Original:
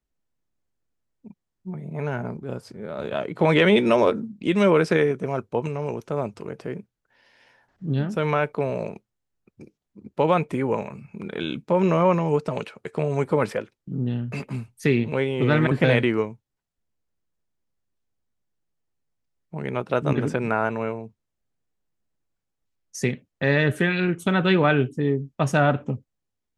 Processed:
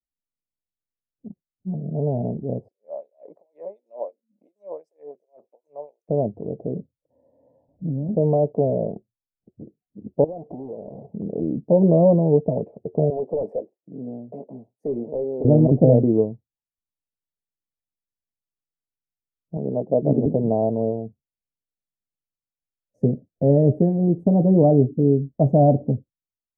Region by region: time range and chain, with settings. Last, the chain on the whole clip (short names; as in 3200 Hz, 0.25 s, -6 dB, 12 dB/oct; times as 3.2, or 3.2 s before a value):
2.68–6.09 compressor 10:1, threshold -23 dBFS + LFO high-pass sine 2.8 Hz 990–7500 Hz + bell 550 Hz +7.5 dB 0.25 oct
6.79–8.09 ripple EQ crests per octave 1.1, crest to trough 9 dB + compressor 12:1, threshold -27 dBFS
10.24–11.14 half-waves squared off + tone controls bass -12 dB, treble +2 dB + compressor, threshold -33 dBFS
13.1–15.45 HPF 440 Hz + high shelf 3200 Hz +3.5 dB + overloaded stage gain 24.5 dB
19.57–20.26 HPF 150 Hz + high shelf 2700 Hz -10.5 dB
whole clip: spectral noise reduction 22 dB; elliptic low-pass 690 Hz, stop band 50 dB; notch 370 Hz, Q 12; gain +6 dB